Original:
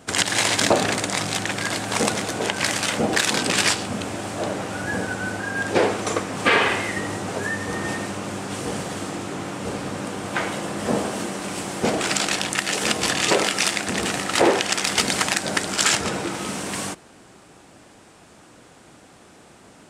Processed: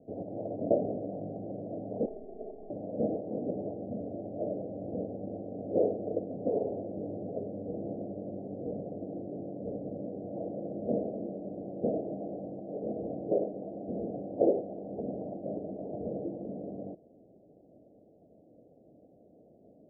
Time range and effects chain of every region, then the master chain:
2.05–2.70 s: robot voice 371 Hz + comb 4.8 ms, depth 76% + flutter echo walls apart 9.6 m, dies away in 0.38 s
whole clip: steep low-pass 670 Hz 72 dB/octave; bass shelf 150 Hz -12 dB; band-stop 370 Hz, Q 12; trim -4.5 dB

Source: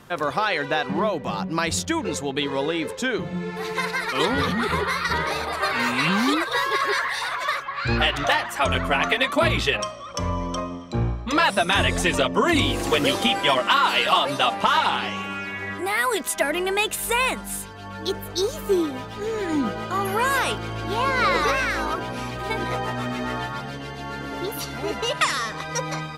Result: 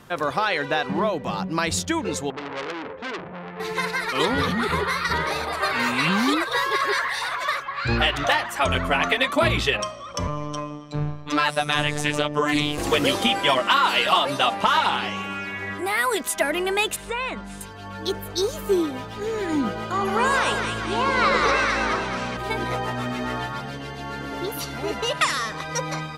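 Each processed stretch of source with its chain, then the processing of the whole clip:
2.30–3.60 s: low-pass 2 kHz 24 dB/octave + hum notches 50/100/150/200/250/300 Hz + transformer saturation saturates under 3.3 kHz
10.27–12.78 s: robot voice 148 Hz + loudspeaker Doppler distortion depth 0.13 ms
16.96–17.61 s: compression 2:1, threshold -25 dBFS + distance through air 130 m + band-stop 830 Hz, Q 13
19.92–22.37 s: low-pass 8.8 kHz 24 dB/octave + two-band feedback delay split 1.2 kHz, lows 86 ms, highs 214 ms, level -5 dB
whole clip: none

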